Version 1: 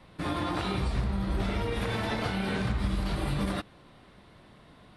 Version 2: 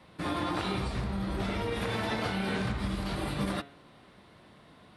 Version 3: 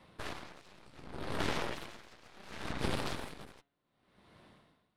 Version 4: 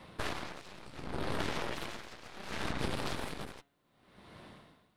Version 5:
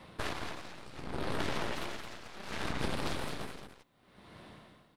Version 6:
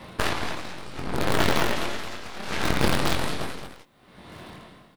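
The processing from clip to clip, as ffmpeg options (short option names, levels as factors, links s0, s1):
-af "highpass=f=110:p=1,bandreject=f=140.3:t=h:w=4,bandreject=f=280.6:t=h:w=4,bandreject=f=420.9:t=h:w=4,bandreject=f=561.2:t=h:w=4,bandreject=f=701.5:t=h:w=4,bandreject=f=841.8:t=h:w=4,bandreject=f=982.1:t=h:w=4,bandreject=f=1122.4:t=h:w=4,bandreject=f=1262.7:t=h:w=4,bandreject=f=1403:t=h:w=4,bandreject=f=1543.3:t=h:w=4,bandreject=f=1683.6:t=h:w=4,bandreject=f=1823.9:t=h:w=4,bandreject=f=1964.2:t=h:w=4,bandreject=f=2104.5:t=h:w=4,bandreject=f=2244.8:t=h:w=4,bandreject=f=2385.1:t=h:w=4,bandreject=f=2525.4:t=h:w=4,bandreject=f=2665.7:t=h:w=4,bandreject=f=2806:t=h:w=4,bandreject=f=2946.3:t=h:w=4,bandreject=f=3086.6:t=h:w=4,bandreject=f=3226.9:t=h:w=4,bandreject=f=3367.2:t=h:w=4,bandreject=f=3507.5:t=h:w=4,bandreject=f=3647.8:t=h:w=4,bandreject=f=3788.1:t=h:w=4,bandreject=f=3928.4:t=h:w=4"
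-af "aeval=exprs='0.133*(cos(1*acos(clip(val(0)/0.133,-1,1)))-cos(1*PI/2))+0.0335*(cos(7*acos(clip(val(0)/0.133,-1,1)))-cos(7*PI/2))+0.0266*(cos(8*acos(clip(val(0)/0.133,-1,1)))-cos(8*PI/2))':c=same,aeval=exprs='val(0)*pow(10,-26*(0.5-0.5*cos(2*PI*0.68*n/s))/20)':c=same,volume=0.841"
-af "acompressor=threshold=0.0126:ratio=5,volume=2.37"
-af "aecho=1:1:220:0.422"
-filter_complex "[0:a]asplit=2[s0][s1];[s1]acrusher=bits=5:dc=4:mix=0:aa=0.000001,volume=0.447[s2];[s0][s2]amix=inputs=2:normalize=0,asplit=2[s3][s4];[s4]adelay=22,volume=0.501[s5];[s3][s5]amix=inputs=2:normalize=0,volume=2.82"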